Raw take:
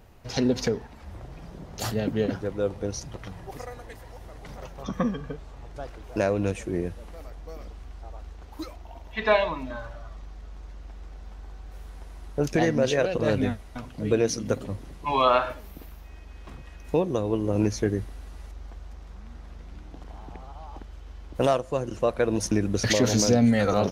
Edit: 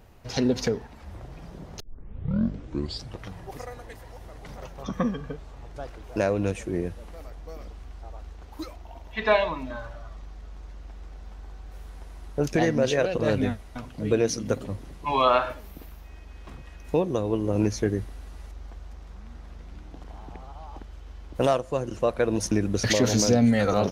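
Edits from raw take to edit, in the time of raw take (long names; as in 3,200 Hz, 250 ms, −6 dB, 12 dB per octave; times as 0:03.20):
0:01.80: tape start 1.42 s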